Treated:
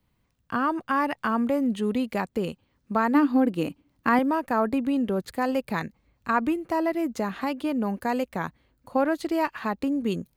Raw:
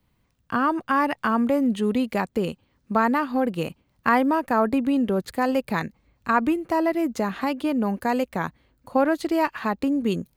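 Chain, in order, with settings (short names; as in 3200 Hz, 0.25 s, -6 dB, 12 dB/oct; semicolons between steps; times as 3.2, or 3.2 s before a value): 3.14–4.19 bell 290 Hz +14 dB 0.32 oct; gain -3 dB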